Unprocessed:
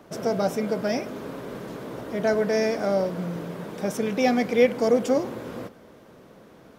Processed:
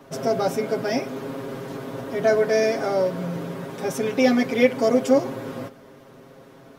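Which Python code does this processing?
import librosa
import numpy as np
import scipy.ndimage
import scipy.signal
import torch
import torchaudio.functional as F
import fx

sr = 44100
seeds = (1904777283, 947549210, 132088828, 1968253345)

y = x + 0.96 * np.pad(x, (int(7.4 * sr / 1000.0), 0))[:len(x)]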